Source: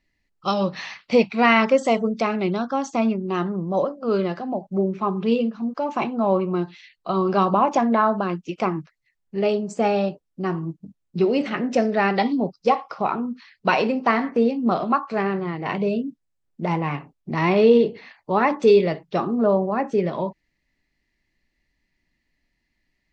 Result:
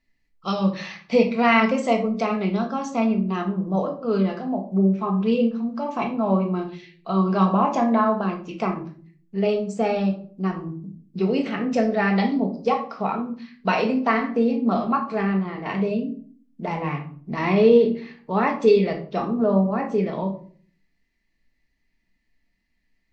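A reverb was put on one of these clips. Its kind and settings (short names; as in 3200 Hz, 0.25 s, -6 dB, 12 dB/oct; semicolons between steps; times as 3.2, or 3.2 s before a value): shoebox room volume 410 m³, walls furnished, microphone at 1.6 m; gain -4 dB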